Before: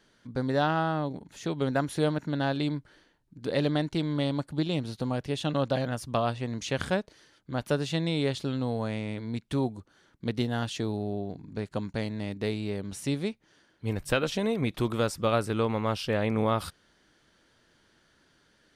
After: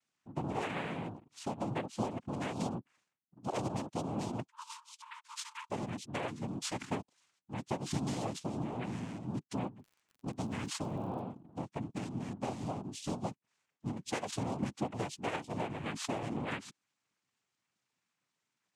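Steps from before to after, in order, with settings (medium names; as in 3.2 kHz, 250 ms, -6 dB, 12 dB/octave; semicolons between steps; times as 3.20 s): expander on every frequency bin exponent 1.5; compression 5:1, threshold -35 dBFS, peak gain reduction 11.5 dB; noise-vocoded speech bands 4; 4.48–5.70 s: brick-wall FIR high-pass 870 Hz; 9.78–11.20 s: crackle 56 per s -52 dBFS; trim +1.5 dB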